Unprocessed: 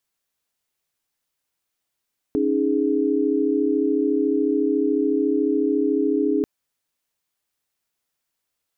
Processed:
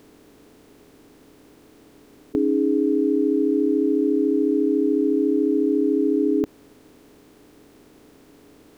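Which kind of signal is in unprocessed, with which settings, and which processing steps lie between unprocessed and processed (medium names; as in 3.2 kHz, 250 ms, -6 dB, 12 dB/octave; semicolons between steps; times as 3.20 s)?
chord C#4/D#4/G#4 sine, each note -22 dBFS 4.09 s
spectral levelling over time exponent 0.4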